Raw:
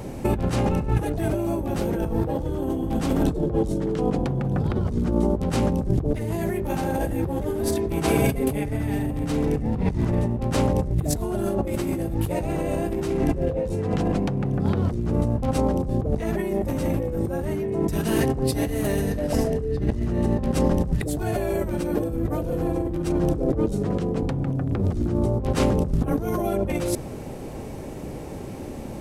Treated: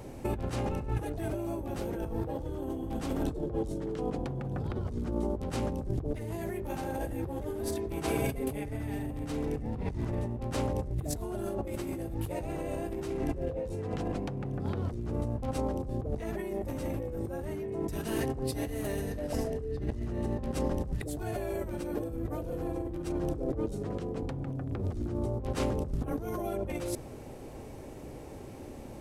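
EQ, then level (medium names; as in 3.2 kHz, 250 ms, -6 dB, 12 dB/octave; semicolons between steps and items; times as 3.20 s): peaking EQ 180 Hz -6 dB 0.54 oct; -9.0 dB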